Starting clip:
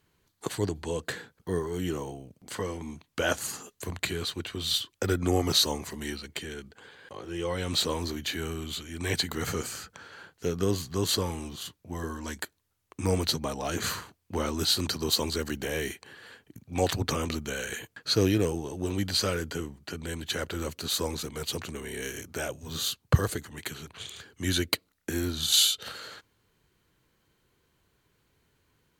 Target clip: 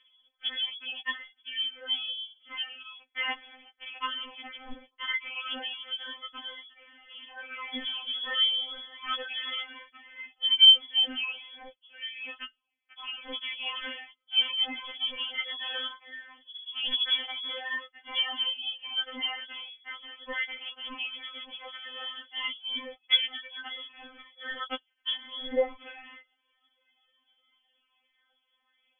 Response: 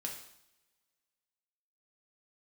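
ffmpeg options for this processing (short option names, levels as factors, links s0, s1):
-af "aphaser=in_gain=1:out_gain=1:delay=4.6:decay=0.71:speed=0.12:type=triangular,lowpass=f=3000:t=q:w=0.5098,lowpass=f=3000:t=q:w=0.6013,lowpass=f=3000:t=q:w=0.9,lowpass=f=3000:t=q:w=2.563,afreqshift=-3500,afftfilt=real='re*3.46*eq(mod(b,12),0)':imag='im*3.46*eq(mod(b,12),0)':win_size=2048:overlap=0.75"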